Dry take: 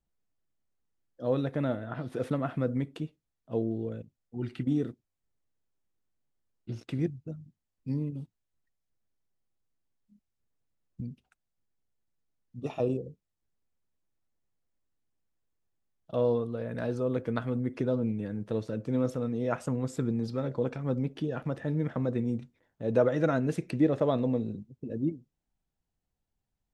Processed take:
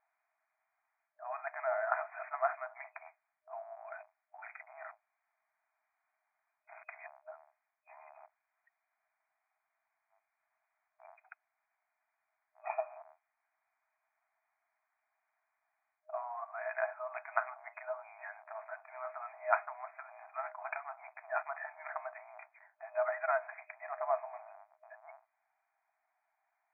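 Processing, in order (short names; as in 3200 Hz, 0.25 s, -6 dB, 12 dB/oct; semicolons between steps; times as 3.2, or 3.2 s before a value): octaver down 2 oct, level 0 dB; reverse; compressor 10:1, threshold -37 dBFS, peak gain reduction 20 dB; reverse; FFT band-pass 620–2500 Hz; gain +15.5 dB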